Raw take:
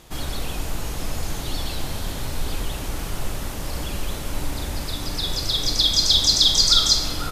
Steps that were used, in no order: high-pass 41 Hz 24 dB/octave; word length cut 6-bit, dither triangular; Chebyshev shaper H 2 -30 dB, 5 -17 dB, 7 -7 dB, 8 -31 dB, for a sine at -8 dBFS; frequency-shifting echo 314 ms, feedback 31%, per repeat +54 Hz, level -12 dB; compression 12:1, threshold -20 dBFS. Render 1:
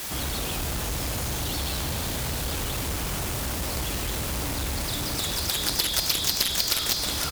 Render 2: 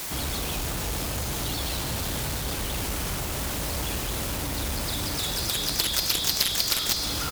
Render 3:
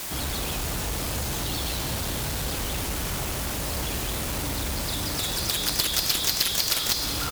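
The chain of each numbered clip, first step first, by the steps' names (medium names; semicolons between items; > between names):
frequency-shifting echo > high-pass > word length cut > compression > Chebyshev shaper; word length cut > compression > high-pass > frequency-shifting echo > Chebyshev shaper; high-pass > compression > word length cut > Chebyshev shaper > frequency-shifting echo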